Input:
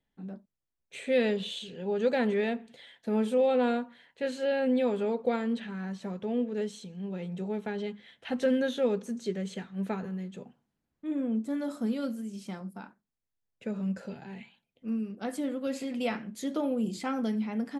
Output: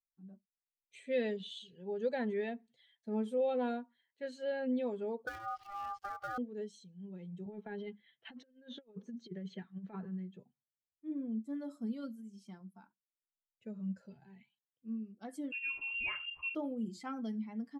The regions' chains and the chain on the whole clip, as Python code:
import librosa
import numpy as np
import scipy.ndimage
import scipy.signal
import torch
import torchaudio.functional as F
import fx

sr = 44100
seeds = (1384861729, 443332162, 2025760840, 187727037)

y = fx.chain(x, sr, fx.dead_time(dead_ms=0.22),
    fx.ring_mod(carrier_hz=1000.0),
    fx.band_squash(depth_pct=100), at=(5.27, 6.38))
y = fx.chain(y, sr, fx.bandpass_edges(low_hz=120.0, high_hz=3800.0),
    fx.over_compress(threshold_db=-34.0, ratio=-0.5), at=(7.46, 10.4))
y = fx.chain(y, sr, fx.freq_invert(carrier_hz=3000),
    fx.env_flatten(amount_pct=50), at=(15.52, 16.55))
y = fx.bin_expand(y, sr, power=1.5)
y = fx.high_shelf(y, sr, hz=7800.0, db=-7.0)
y = y * 10.0 ** (-6.0 / 20.0)